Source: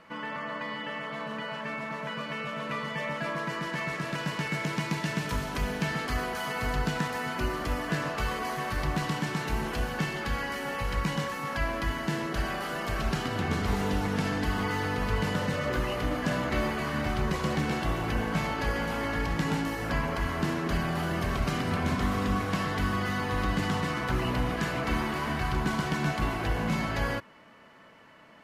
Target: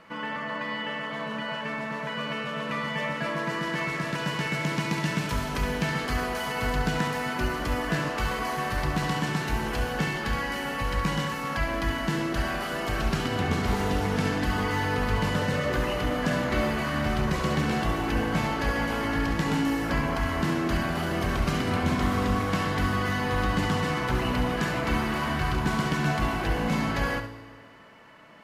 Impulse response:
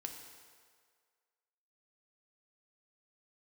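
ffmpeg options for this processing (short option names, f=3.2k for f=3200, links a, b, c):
-filter_complex "[0:a]asplit=2[a][b];[1:a]atrim=start_sample=2205,adelay=69[c];[b][c]afir=irnorm=-1:irlink=0,volume=-5.5dB[d];[a][d]amix=inputs=2:normalize=0,volume=2dB"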